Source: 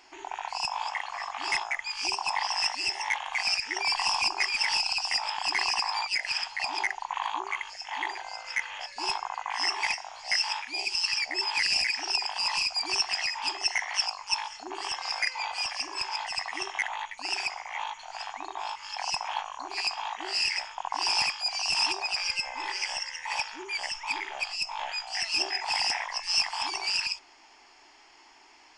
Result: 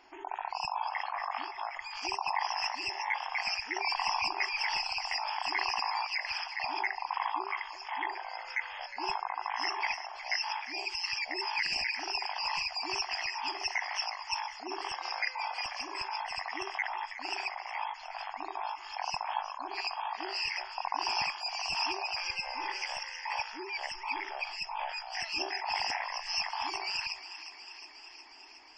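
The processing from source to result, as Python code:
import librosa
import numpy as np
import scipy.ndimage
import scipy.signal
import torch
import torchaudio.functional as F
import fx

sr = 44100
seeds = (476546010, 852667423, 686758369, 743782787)

y = fx.over_compress(x, sr, threshold_db=-36.0, ratio=-1.0, at=(1.01, 2.03))
y = fx.high_shelf(y, sr, hz=2400.0, db=-9.5)
y = fx.echo_thinned(y, sr, ms=362, feedback_pct=75, hz=900.0, wet_db=-12)
y = fx.spec_gate(y, sr, threshold_db=-25, keep='strong')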